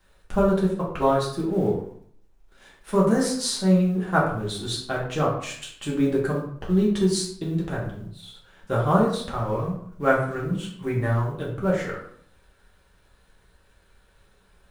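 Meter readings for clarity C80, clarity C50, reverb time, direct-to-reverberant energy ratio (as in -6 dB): 8.5 dB, 5.0 dB, 0.60 s, -5.0 dB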